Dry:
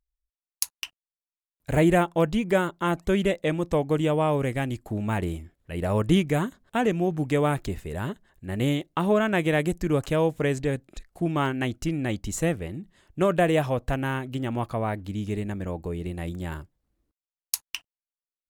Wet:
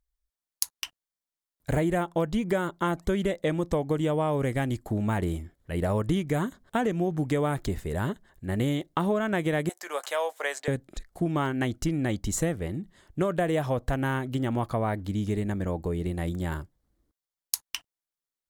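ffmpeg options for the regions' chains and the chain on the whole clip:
-filter_complex "[0:a]asettb=1/sr,asplit=3[a][b][c];[a]atrim=end=9.694[d];[b]atrim=start=9.69:end=10.68,asetpts=PTS-STARTPTS,afade=t=in:d=0.004:c=qsin,afade=t=out:st=0.986:d=0.004:c=qsin,highpass=f=650:w=0.5412,highpass=f=650:w=1.3066,asplit=2[e][f];[f]adelay=14,volume=-11dB[g];[e][g]amix=inputs=2:normalize=0,atrim=end_sample=43659[h];[c]atrim=start=10.676[i];[d][h]acrossfade=d=0.004:c1=hsin:c2=qsin[j];[j][i]acrossfade=d=0.004:c1=qsin:c2=hsin,equalizer=f=2.6k:t=o:w=0.27:g=-7.5,acompressor=threshold=-25dB:ratio=6,volume=2.5dB"

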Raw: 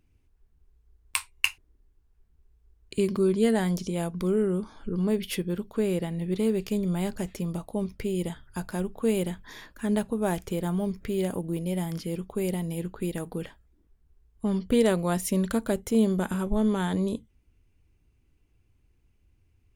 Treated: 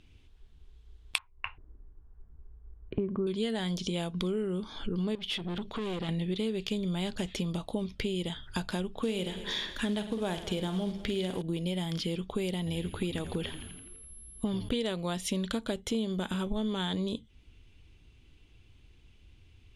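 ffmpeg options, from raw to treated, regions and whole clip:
-filter_complex "[0:a]asettb=1/sr,asplit=3[a][b][c];[a]atrim=end=1.184[d];[b]atrim=start=1.18:end=3.27,asetpts=PTS-STARTPTS,afade=t=in:d=0.004:c=qsin,afade=t=out:st=2.086:d=0.004:c=qsin,lowpass=f=1.4k:w=0.5412,lowpass=f=1.4k:w=1.3066,lowshelf=f=160:g=3.5[e];[c]atrim=start=3.266[f];[d][e]acrossfade=d=0.004:c1=hsin:c2=qsin[g];[g][f]acrossfade=d=0.004:c1=qsin:c2=hsin,asettb=1/sr,asplit=3[h][i][j];[h]atrim=end=5.154[k];[i]atrim=start=5.15:end=6.09,asetpts=PTS-STARTPTS,afade=t=in:d=0.004:c=qsin,afade=t=out:st=0.936:d=0.004:c=qsin,highshelf=f=8.8k:g=-10,acompressor=threshold=-29dB:ratio=4:attack=3.2:release=140:knee=1:detection=peak,aeval=exprs='(tanh(70.8*val(0)+0.4)-tanh(0.4))/70.8':c=same[l];[j]atrim=start=6.086[m];[k][l]acrossfade=d=0.004:c1=hsin:c2=qsin[n];[n][m]acrossfade=d=0.004:c1=qsin:c2=hsin,asettb=1/sr,asplit=3[o][p][q];[o]atrim=end=9.034[r];[p]atrim=start=9.03:end=11.42,asetpts=PTS-STARTPTS,afade=t=in:d=0.004:c=qsin,afade=t=out:st=2.386:d=0.004:c=qsin,aecho=1:1:105|210|315|420|525:0.15|0.0868|0.0503|0.0292|0.0169,atrim=end_sample=105399,acrusher=bits=7:mode=log:mix=0:aa=0.000001,asplit=2[s][t];[t]adelay=49,volume=-11dB[u];[s][u]amix=inputs=2:normalize=0,atrim=end_sample=105399[v];[q]atrim=start=11.416[w];[r][v]acrossfade=d=0.004:c1=hsin:c2=qsin[x];[x][w]acrossfade=d=0.004:c1=qsin:c2=hsin,asettb=1/sr,asplit=3[y][z][aa];[y]atrim=end=12.584[ab];[z]atrim=start=12.58:end=14.69,asetpts=PTS-STARTPTS,afade=t=in:d=0.004:c=qsin,afade=t=out:st=2.106:d=0.004:c=qsin,highshelf=f=8.3k:g=-4.5,asplit=8[ac][ad][ae][af][ag][ah][ai][aj];[ad]adelay=84,afreqshift=-87,volume=-13dB[ak];[ae]adelay=168,afreqshift=-174,volume=-17.4dB[al];[af]adelay=252,afreqshift=-261,volume=-21.9dB[am];[ag]adelay=336,afreqshift=-348,volume=-26.3dB[an];[ah]adelay=420,afreqshift=-435,volume=-30.7dB[ao];[ai]adelay=504,afreqshift=-522,volume=-35.2dB[ap];[aj]adelay=588,afreqshift=-609,volume=-39.6dB[aq];[ac][ak][al][am][an][ao][ap][aq]amix=inputs=8:normalize=0,atrim=end_sample=93051,aeval=exprs='val(0)+0.00316*sin(2*PI*11000*n/s)':c=same[ar];[aa]atrim=start=14.686[as];[ab][ar]acrossfade=d=0.004:c1=hsin:c2=qsin[at];[at][as]acrossfade=d=0.004:c1=qsin:c2=hsin,lowpass=8.8k,equalizer=f=3.4k:w=1.8:g=14,acompressor=threshold=-38dB:ratio=5,volume=7.5dB"

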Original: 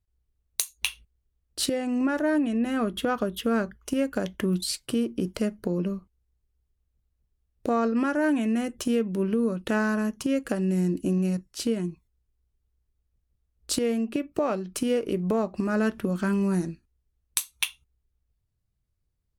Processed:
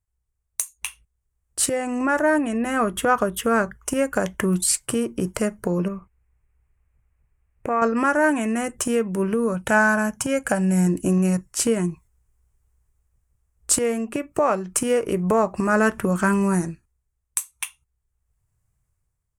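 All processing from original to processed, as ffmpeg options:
-filter_complex "[0:a]asettb=1/sr,asplit=3[a][b][c];[a]atrim=end=5.884[d];[b]atrim=start=5.88:end=7.82,asetpts=PTS-STARTPTS,afade=t=in:d=0.004:c=qsin,afade=t=out:st=1.936:d=0.004:c=qsin,highshelf=f=3.2k:t=q:w=3:g=-9.5,acompressor=threshold=-37dB:ratio=1.5:attack=3.2:release=140:knee=1:detection=peak[e];[c]atrim=start=7.816[f];[d][e]acrossfade=d=0.004:c1=hsin:c2=qsin[g];[g][f]acrossfade=d=0.004:c1=qsin:c2=hsin,asettb=1/sr,asplit=3[h][i][j];[h]atrim=end=9.544[k];[i]atrim=start=9.54:end=10.87,asetpts=PTS-STARTPTS,afade=t=in:d=0.004:c=qsin,afade=t=out:st=1.326:d=0.004:c=qsin,highpass=45,aecho=1:1:1.3:0.47,atrim=end_sample=58653[l];[j]atrim=start=10.866[m];[k][l]acrossfade=d=0.004:c1=hsin:c2=qsin[n];[n][m]acrossfade=d=0.004:c1=qsin:c2=hsin,equalizer=f=125:t=o:w=1:g=4,equalizer=f=250:t=o:w=1:g=-6,equalizer=f=1k:t=o:w=1:g=6,equalizer=f=2k:t=o:w=1:g=4,equalizer=f=4k:t=o:w=1:g=-11,equalizer=f=8k:t=o:w=1:g=11,dynaudnorm=f=170:g=9:m=12dB,volume=-4dB"

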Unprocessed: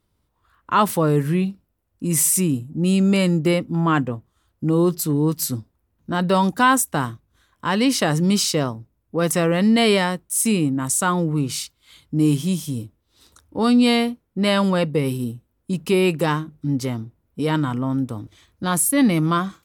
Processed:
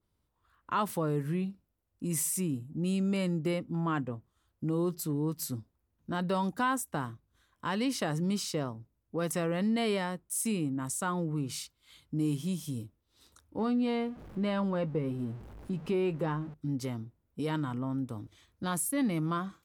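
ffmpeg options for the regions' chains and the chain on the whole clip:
-filter_complex "[0:a]asettb=1/sr,asplit=3[a][b][c];[a]atrim=end=13.594[d];[b]atrim=start=13.59:end=16.54,asetpts=PTS-STARTPTS,afade=t=in:d=0.004:c=qsin,afade=t=out:st=2.946:d=0.004:c=qsin,aeval=exprs='val(0)+0.5*0.0211*sgn(val(0))':c=same,lowpass=f=1.4k:p=1,asplit=2[e][f];[f]adelay=19,volume=-13.5dB[g];[e][g]amix=inputs=2:normalize=0,atrim=end_sample=130095[h];[c]atrim=start=16.536[i];[d][h]acrossfade=d=0.004:c1=hsin:c2=qsin[j];[j][i]acrossfade=d=0.004:c1=qsin:c2=hsin,acompressor=threshold=-25dB:ratio=1.5,adynamicequalizer=threshold=0.0112:dfrequency=2000:dqfactor=0.7:tfrequency=2000:tqfactor=0.7:attack=5:release=100:ratio=0.375:range=2.5:mode=cutabove:tftype=highshelf,volume=-8.5dB"

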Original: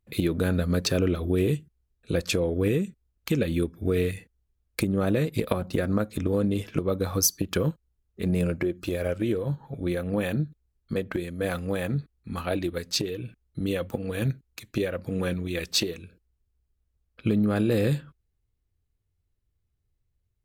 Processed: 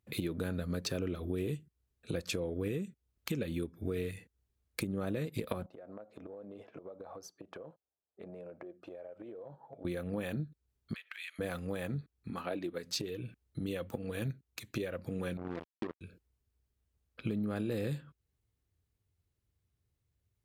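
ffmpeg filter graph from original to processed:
-filter_complex "[0:a]asettb=1/sr,asplit=3[a][b][c];[a]atrim=end=5.664[d];[b]atrim=start=5.66:end=9.85,asetpts=PTS-STARTPTS,afade=t=in:d=0.004:c=qsin,afade=t=out:st=4.186:d=0.004:c=qsin,bandpass=f=680:t=q:w=2.8,acompressor=threshold=-42dB:ratio=16:attack=3.2:release=140:knee=1:detection=peak[e];[c]atrim=start=9.846[f];[d][e]acrossfade=d=0.004:c1=hsin:c2=qsin[g];[g][f]acrossfade=d=0.004:c1=qsin:c2=hsin,asettb=1/sr,asplit=3[h][i][j];[h]atrim=end=10.944[k];[i]atrim=start=10.94:end=11.39,asetpts=PTS-STARTPTS,afade=t=in:d=0.004:c=qsin,afade=t=out:st=0.446:d=0.004:c=qsin,highpass=f=1.2k:w=0.5412,highpass=f=1.2k:w=1.3066,acompressor=threshold=-50dB:ratio=4:attack=3.2:release=140:knee=1:detection=peak,equalizer=f=2.6k:t=o:w=1.5:g=13.5[l];[j]atrim=start=11.386[m];[k][l]acrossfade=d=0.004:c1=hsin:c2=qsin[n];[n][m]acrossfade=d=0.004:c1=qsin:c2=hsin,asettb=1/sr,asplit=3[o][p][q];[o]atrim=end=12.304[r];[p]atrim=start=12.3:end=12.84,asetpts=PTS-STARTPTS,afade=t=in:d=0.004:c=qsin,afade=t=out:st=0.536:d=0.004:c=qsin,highpass=190,highshelf=f=3.3k:g=-8[s];[q]atrim=start=12.836[t];[r][s]acrossfade=d=0.004:c1=hsin:c2=qsin[u];[u][t]acrossfade=d=0.004:c1=qsin:c2=hsin,asettb=1/sr,asplit=3[v][w][x];[v]atrim=end=15.374[y];[w]atrim=start=15.37:end=16.01,asetpts=PTS-STARTPTS,afade=t=in:d=0.004:c=qsin,afade=t=out:st=0.636:d=0.004:c=qsin,bandpass=f=270:t=q:w=1,acrusher=bits=4:mix=0:aa=0.5[z];[x]atrim=start=16.006[aa];[y][z]acrossfade=d=0.004:c1=hsin:c2=qsin[ab];[ab][aa]acrossfade=d=0.004:c1=qsin:c2=hsin,highpass=72,acompressor=threshold=-41dB:ratio=2"

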